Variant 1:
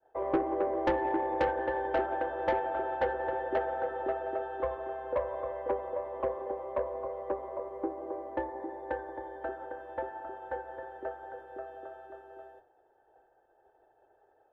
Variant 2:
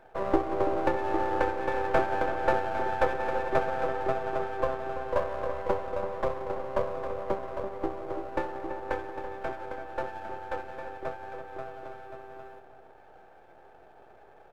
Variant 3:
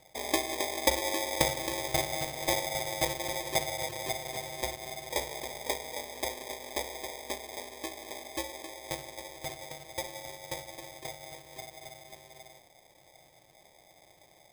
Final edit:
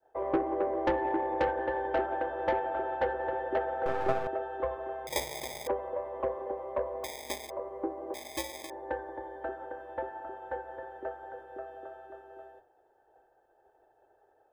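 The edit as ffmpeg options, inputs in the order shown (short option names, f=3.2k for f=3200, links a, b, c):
-filter_complex "[2:a]asplit=3[a][b][c];[0:a]asplit=5[d][e][f][g][h];[d]atrim=end=3.862[i];[1:a]atrim=start=3.858:end=4.272[j];[e]atrim=start=4.268:end=5.072[k];[a]atrim=start=5.068:end=5.672[l];[f]atrim=start=5.668:end=7.042[m];[b]atrim=start=7.038:end=7.502[n];[g]atrim=start=7.498:end=8.142[o];[c]atrim=start=8.138:end=8.702[p];[h]atrim=start=8.698[q];[i][j]acrossfade=d=0.004:c1=hsin:c2=hsin[r];[r][k]acrossfade=d=0.004:c1=hsin:c2=hsin[s];[s][l]acrossfade=d=0.004:c1=hsin:c2=hsin[t];[t][m]acrossfade=d=0.004:c1=hsin:c2=hsin[u];[u][n]acrossfade=d=0.004:c1=hsin:c2=hsin[v];[v][o]acrossfade=d=0.004:c1=hsin:c2=hsin[w];[w][p]acrossfade=d=0.004:c1=hsin:c2=hsin[x];[x][q]acrossfade=d=0.004:c1=hsin:c2=hsin"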